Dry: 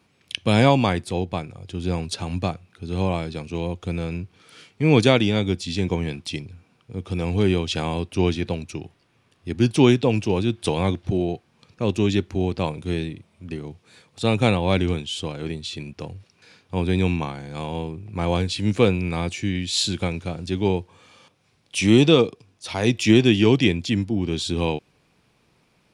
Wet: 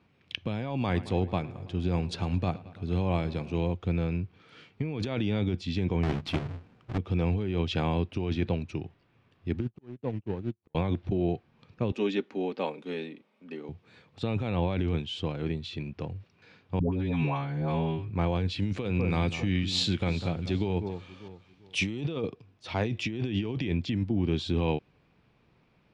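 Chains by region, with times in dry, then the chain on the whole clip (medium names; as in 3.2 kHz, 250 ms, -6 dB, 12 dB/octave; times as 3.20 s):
0.77–3.74 s: treble shelf 7.9 kHz +10.5 dB + filtered feedback delay 109 ms, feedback 76%, low-pass 4.9 kHz, level -21 dB
6.03–6.98 s: square wave that keeps the level + hum notches 50/100/150/200/250 Hz
9.60–10.75 s: median filter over 25 samples + slow attack 361 ms + upward expansion 2.5:1, over -37 dBFS
11.92–13.69 s: high-pass 260 Hz 24 dB/octave + comb of notches 340 Hz
16.79–18.10 s: treble shelf 4.2 kHz -6.5 dB + comb 7.3 ms, depth 84% + phase dispersion highs, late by 134 ms, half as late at 600 Hz
18.62–22.01 s: treble shelf 3.5 kHz +7.5 dB + echo whose repeats swap between lows and highs 197 ms, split 1.5 kHz, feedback 53%, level -12 dB
whole clip: low-pass 3.2 kHz 12 dB/octave; bass shelf 210 Hz +4.5 dB; compressor with a negative ratio -21 dBFS, ratio -1; trim -6.5 dB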